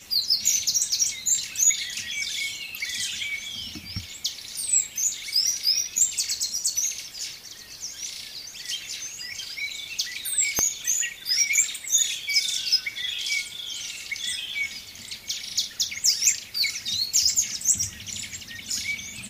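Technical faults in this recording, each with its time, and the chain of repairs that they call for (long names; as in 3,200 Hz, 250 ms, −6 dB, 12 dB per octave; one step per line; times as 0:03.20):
0:10.59: click −5 dBFS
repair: click removal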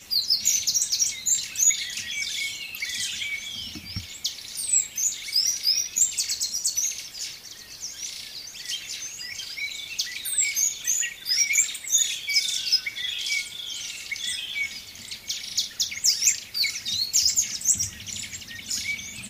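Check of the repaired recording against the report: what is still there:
0:10.59: click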